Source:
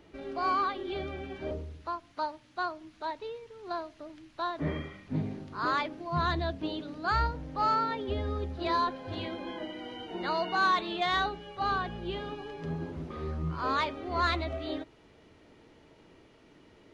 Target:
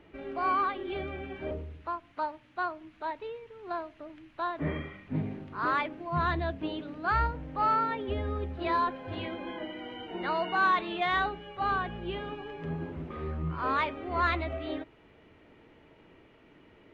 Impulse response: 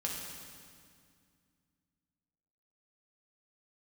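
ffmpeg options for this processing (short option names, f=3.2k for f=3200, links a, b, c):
-af "highshelf=f=3.6k:t=q:w=1.5:g=-10"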